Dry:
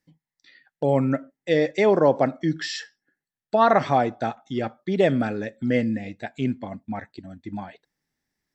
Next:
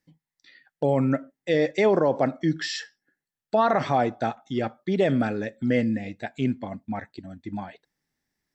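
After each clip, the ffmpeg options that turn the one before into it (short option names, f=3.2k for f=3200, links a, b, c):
-af "alimiter=limit=-11.5dB:level=0:latency=1:release=28"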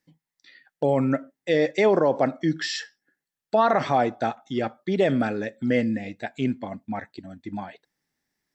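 -af "lowshelf=f=120:g=-7.5,volume=1.5dB"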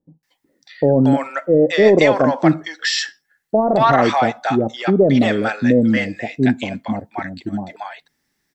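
-filter_complex "[0:a]acontrast=61,acrossover=split=700[a][b];[b]adelay=230[c];[a][c]amix=inputs=2:normalize=0,volume=3.5dB"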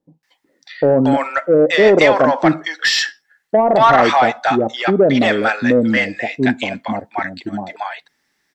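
-filter_complex "[0:a]asplit=2[a][b];[b]highpass=f=720:p=1,volume=12dB,asoftclip=type=tanh:threshold=-1dB[c];[a][c]amix=inputs=2:normalize=0,lowpass=f=4.1k:p=1,volume=-6dB"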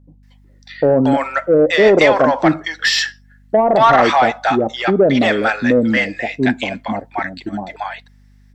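-af "aeval=exprs='val(0)+0.00447*(sin(2*PI*50*n/s)+sin(2*PI*2*50*n/s)/2+sin(2*PI*3*50*n/s)/3+sin(2*PI*4*50*n/s)/4+sin(2*PI*5*50*n/s)/5)':c=same"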